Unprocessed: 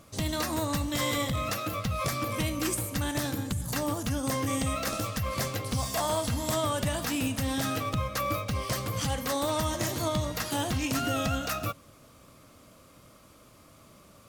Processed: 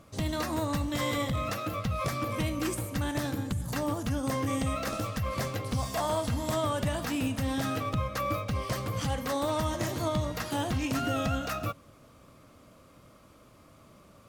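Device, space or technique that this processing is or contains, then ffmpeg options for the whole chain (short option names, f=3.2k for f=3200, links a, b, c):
behind a face mask: -af "highshelf=f=3.3k:g=-7.5"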